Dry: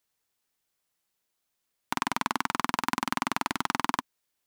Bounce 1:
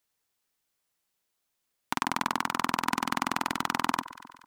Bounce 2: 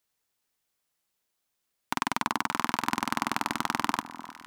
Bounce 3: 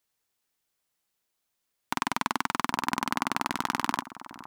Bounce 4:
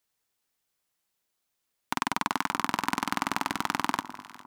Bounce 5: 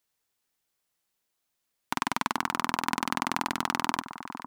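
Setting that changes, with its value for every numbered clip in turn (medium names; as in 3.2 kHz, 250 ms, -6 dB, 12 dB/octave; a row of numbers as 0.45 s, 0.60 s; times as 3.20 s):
echo whose repeats swap between lows and highs, time: 119 ms, 301 ms, 801 ms, 202 ms, 456 ms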